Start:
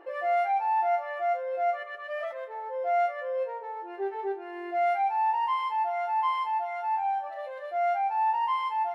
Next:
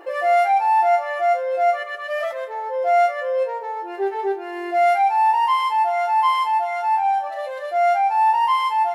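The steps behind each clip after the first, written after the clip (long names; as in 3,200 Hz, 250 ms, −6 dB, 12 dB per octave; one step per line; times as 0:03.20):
bass and treble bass −2 dB, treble +11 dB
level +9 dB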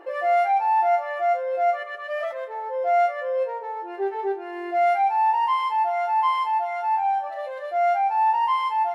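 high-shelf EQ 4,200 Hz −9.5 dB
level −3 dB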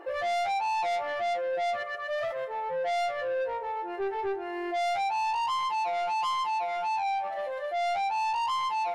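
soft clipping −27 dBFS, distortion −8 dB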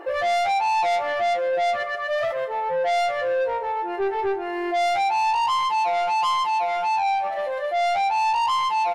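repeating echo 147 ms, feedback 52%, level −21 dB
level +7 dB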